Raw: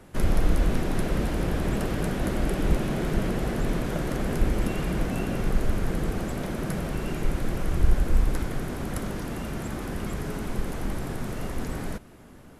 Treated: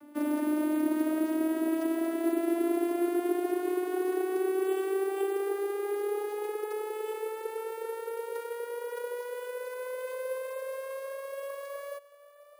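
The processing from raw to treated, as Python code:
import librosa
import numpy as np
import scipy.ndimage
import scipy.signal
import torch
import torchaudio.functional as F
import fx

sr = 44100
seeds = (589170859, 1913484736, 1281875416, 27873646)

y = fx.vocoder_glide(x, sr, note=62, semitones=12)
y = scipy.signal.sosfilt(scipy.signal.butter(4, 6000.0, 'lowpass', fs=sr, output='sos'), y)
y = np.repeat(y[::4], 4)[:len(y)]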